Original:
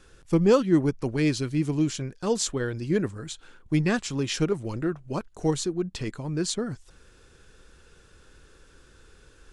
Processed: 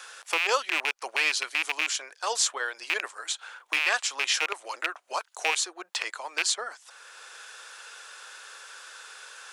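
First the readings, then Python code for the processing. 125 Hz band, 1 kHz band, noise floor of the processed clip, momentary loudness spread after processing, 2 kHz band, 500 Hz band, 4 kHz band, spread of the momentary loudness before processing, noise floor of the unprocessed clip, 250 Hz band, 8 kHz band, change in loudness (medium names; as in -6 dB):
under -40 dB, +5.0 dB, -61 dBFS, 19 LU, +10.5 dB, -10.5 dB, +7.0 dB, 12 LU, -56 dBFS, -26.0 dB, +5.0 dB, -1.0 dB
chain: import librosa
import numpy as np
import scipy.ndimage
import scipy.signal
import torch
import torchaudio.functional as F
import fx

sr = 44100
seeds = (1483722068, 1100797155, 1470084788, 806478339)

y = fx.rattle_buzz(x, sr, strikes_db=-28.0, level_db=-19.0)
y = scipy.signal.sosfilt(scipy.signal.cheby2(4, 70, 160.0, 'highpass', fs=sr, output='sos'), y)
y = fx.band_squash(y, sr, depth_pct=40)
y = y * 10.0 ** (6.0 / 20.0)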